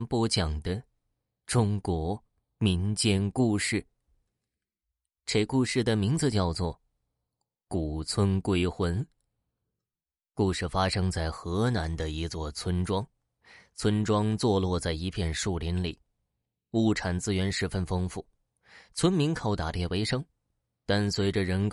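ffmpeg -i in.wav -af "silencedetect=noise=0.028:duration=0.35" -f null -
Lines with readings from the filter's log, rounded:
silence_start: 0.79
silence_end: 1.49 | silence_duration: 0.71
silence_start: 2.15
silence_end: 2.61 | silence_duration: 0.46
silence_start: 3.80
silence_end: 5.28 | silence_duration: 1.49
silence_start: 6.71
silence_end: 7.71 | silence_duration: 1.00
silence_start: 9.03
silence_end: 10.39 | silence_duration: 1.36
silence_start: 13.03
silence_end: 13.79 | silence_duration: 0.76
silence_start: 15.91
silence_end: 16.74 | silence_duration: 0.83
silence_start: 18.20
silence_end: 18.97 | silence_duration: 0.77
silence_start: 20.21
silence_end: 20.89 | silence_duration: 0.68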